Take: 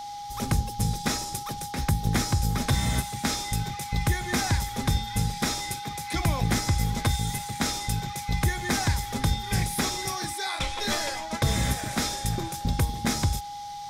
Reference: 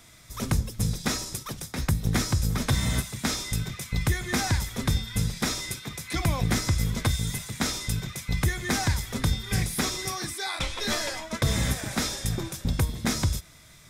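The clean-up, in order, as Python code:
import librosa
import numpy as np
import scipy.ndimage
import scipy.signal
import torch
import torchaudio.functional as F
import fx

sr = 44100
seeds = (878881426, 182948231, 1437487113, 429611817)

y = fx.notch(x, sr, hz=820.0, q=30.0)
y = fx.noise_reduce(y, sr, print_start_s=13.38, print_end_s=13.88, reduce_db=6.0)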